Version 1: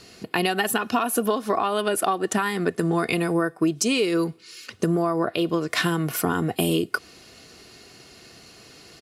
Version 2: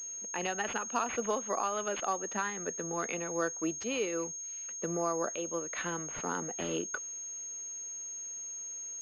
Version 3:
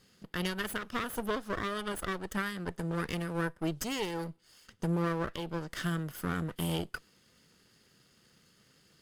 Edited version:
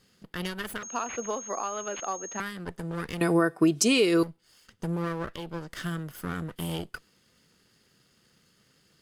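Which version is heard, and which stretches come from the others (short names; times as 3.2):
3
0.83–2.4 from 2
3.21–4.23 from 1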